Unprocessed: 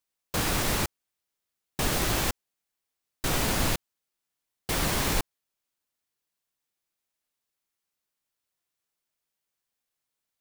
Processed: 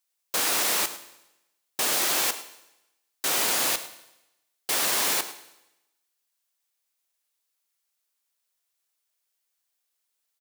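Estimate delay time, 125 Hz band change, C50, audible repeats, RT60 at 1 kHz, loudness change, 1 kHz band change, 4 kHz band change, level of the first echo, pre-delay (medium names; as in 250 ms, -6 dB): 105 ms, -20.5 dB, 11.5 dB, 1, 0.90 s, +4.0 dB, +1.0 dB, +4.5 dB, -16.0 dB, 15 ms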